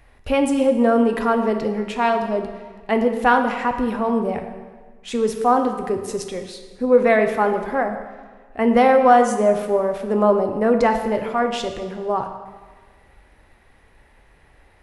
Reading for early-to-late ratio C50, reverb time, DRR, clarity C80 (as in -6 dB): 7.5 dB, 1.5 s, 5.0 dB, 9.0 dB